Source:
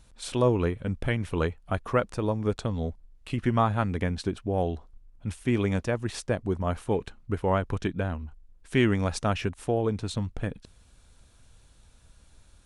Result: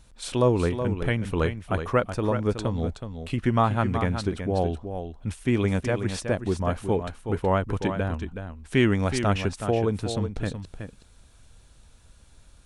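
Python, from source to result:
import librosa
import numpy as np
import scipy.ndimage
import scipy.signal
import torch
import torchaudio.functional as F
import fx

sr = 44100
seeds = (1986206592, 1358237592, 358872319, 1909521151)

y = x + 10.0 ** (-8.5 / 20.0) * np.pad(x, (int(372 * sr / 1000.0), 0))[:len(x)]
y = F.gain(torch.from_numpy(y), 2.0).numpy()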